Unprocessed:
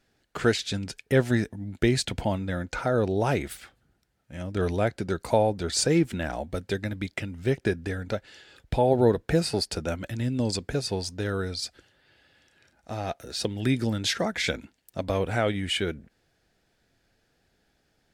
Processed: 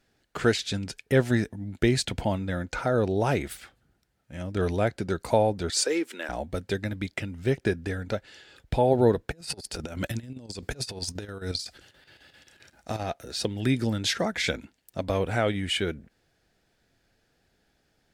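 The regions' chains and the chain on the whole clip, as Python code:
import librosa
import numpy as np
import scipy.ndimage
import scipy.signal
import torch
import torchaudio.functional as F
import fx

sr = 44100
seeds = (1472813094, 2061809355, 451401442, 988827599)

y = fx.chain(x, sr, fx.highpass(hz=360.0, slope=24),
    fx.peak_eq(hz=710.0, db=-8.5, octaves=0.44), at=(5.7, 6.29))
y = fx.chain(y, sr, fx.high_shelf(hz=3400.0, db=5.0),
    fx.over_compress(threshold_db=-33.0, ratio=-0.5),
    fx.chopper(hz=7.6, depth_pct=60, duty_pct=75), at=(9.31, 13.03))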